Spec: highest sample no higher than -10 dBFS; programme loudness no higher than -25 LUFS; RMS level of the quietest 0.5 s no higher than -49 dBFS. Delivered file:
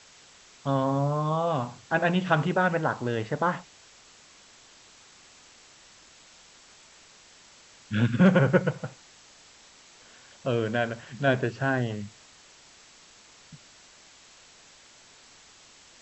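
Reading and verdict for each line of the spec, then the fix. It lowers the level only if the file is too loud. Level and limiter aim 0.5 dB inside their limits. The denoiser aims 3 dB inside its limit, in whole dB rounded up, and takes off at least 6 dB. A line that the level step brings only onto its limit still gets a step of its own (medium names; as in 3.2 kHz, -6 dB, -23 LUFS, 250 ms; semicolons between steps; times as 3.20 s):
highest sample -7.0 dBFS: fail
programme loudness -26.5 LUFS: pass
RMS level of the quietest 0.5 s -54 dBFS: pass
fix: peak limiter -10.5 dBFS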